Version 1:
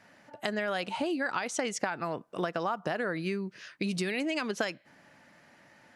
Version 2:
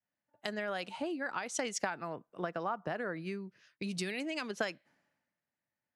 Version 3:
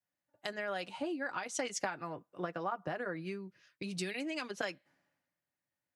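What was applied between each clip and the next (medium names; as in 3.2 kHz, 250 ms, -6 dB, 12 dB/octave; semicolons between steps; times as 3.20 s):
three bands expanded up and down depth 100%; trim -5.5 dB
comb of notches 220 Hz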